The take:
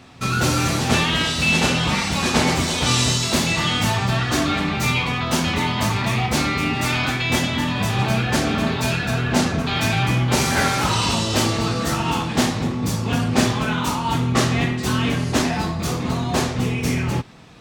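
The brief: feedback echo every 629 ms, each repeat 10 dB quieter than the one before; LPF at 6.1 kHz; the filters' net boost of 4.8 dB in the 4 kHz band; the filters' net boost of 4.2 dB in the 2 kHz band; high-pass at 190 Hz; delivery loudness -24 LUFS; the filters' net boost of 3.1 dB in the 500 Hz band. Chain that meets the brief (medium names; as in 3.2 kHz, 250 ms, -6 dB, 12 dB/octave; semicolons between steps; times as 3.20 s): high-pass 190 Hz; low-pass 6.1 kHz; peaking EQ 500 Hz +4 dB; peaking EQ 2 kHz +3.5 dB; peaking EQ 4 kHz +5.5 dB; feedback delay 629 ms, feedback 32%, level -10 dB; trim -6.5 dB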